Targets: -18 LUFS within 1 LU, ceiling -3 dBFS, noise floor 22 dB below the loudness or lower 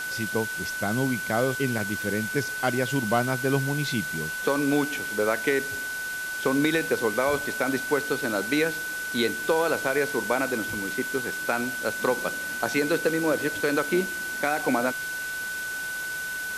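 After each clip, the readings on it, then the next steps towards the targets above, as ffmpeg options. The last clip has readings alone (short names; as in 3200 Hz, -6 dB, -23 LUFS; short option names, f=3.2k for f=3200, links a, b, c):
steady tone 1500 Hz; tone level -30 dBFS; noise floor -32 dBFS; noise floor target -49 dBFS; loudness -26.5 LUFS; peak -10.5 dBFS; loudness target -18.0 LUFS
-> -af "bandreject=f=1.5k:w=30"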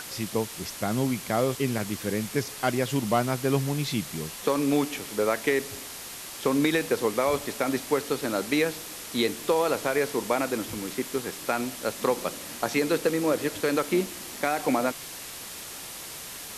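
steady tone none; noise floor -40 dBFS; noise floor target -50 dBFS
-> -af "afftdn=nr=10:nf=-40"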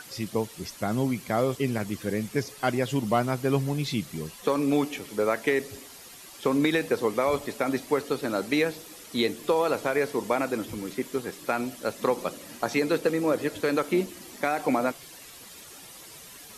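noise floor -47 dBFS; noise floor target -50 dBFS
-> -af "afftdn=nr=6:nf=-47"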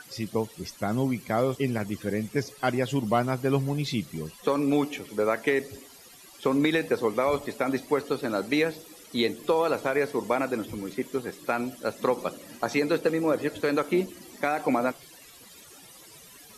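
noise floor -50 dBFS; loudness -28.0 LUFS; peak -11.5 dBFS; loudness target -18.0 LUFS
-> -af "volume=10dB,alimiter=limit=-3dB:level=0:latency=1"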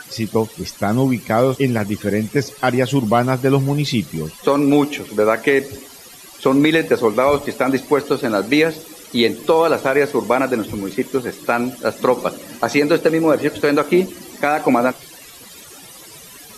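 loudness -18.0 LUFS; peak -3.0 dBFS; noise floor -40 dBFS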